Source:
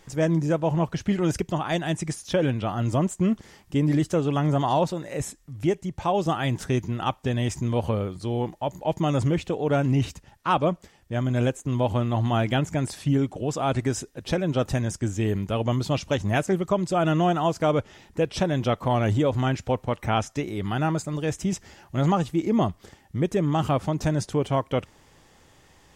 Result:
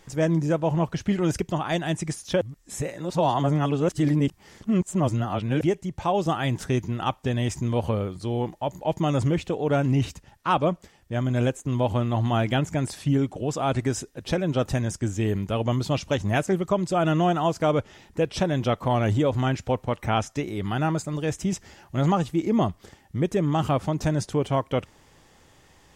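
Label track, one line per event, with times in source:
2.410000	5.610000	reverse

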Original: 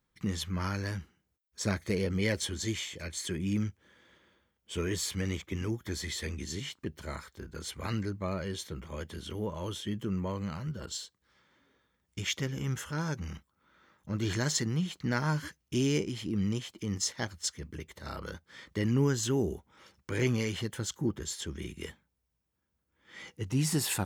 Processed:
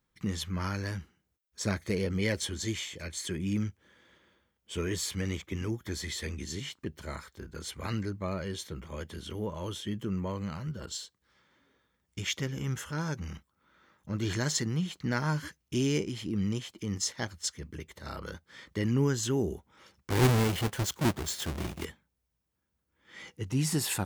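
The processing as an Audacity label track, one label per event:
20.100000	21.850000	square wave that keeps the level

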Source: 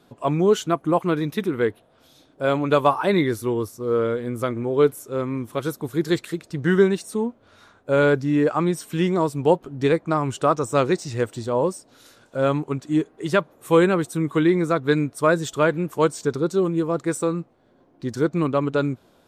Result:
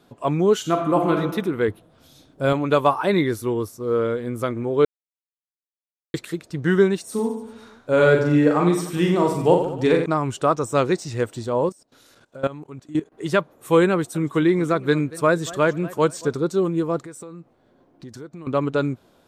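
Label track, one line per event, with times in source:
0.590000	1.140000	reverb throw, RT60 1 s, DRR 2.5 dB
1.680000	2.530000	tone controls bass +8 dB, treble +4 dB
4.850000	6.140000	mute
7.030000	10.060000	reverse bouncing-ball echo first gap 40 ms, each gap 1.2×, echoes 7
11.690000	13.120000	level held to a coarse grid steps of 18 dB
13.920000	16.370000	modulated delay 230 ms, feedback 32%, depth 171 cents, level -19 dB
17.030000	18.470000	compression 5:1, threshold -36 dBFS

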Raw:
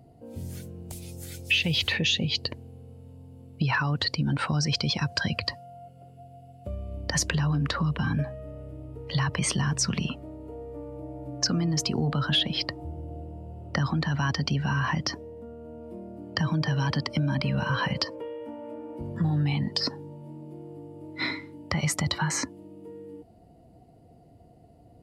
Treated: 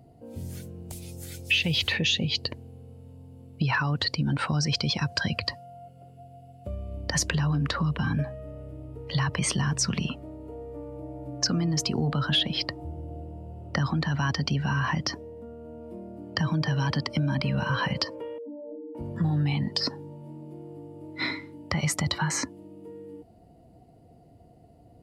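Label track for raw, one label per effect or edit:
18.380000	18.950000	spectral contrast enhancement exponent 3

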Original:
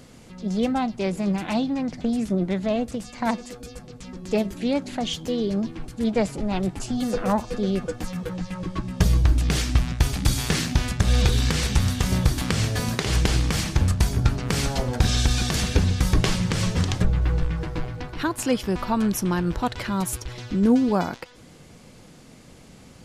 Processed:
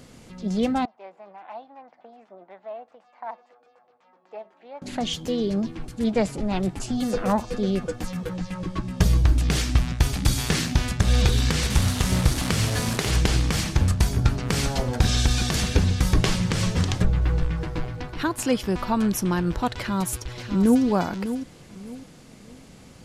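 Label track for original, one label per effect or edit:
0.850000	4.820000	ladder band-pass 930 Hz, resonance 45%
11.700000	13.110000	one-bit delta coder 64 kbps, step -23 dBFS
19.760000	20.830000	echo throw 600 ms, feedback 30%, level -10.5 dB

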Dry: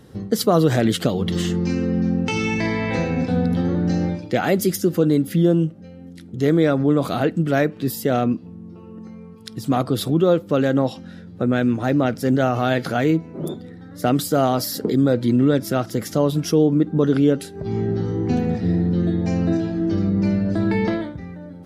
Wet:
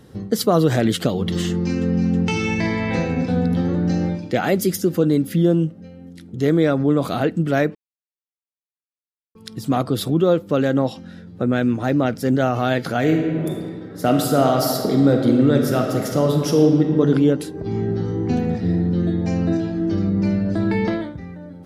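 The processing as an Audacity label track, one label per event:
1.490000	2.030000	echo throw 320 ms, feedback 80%, level -9.5 dB
7.750000	9.350000	mute
12.980000	17.000000	reverb throw, RT60 2.1 s, DRR 2 dB

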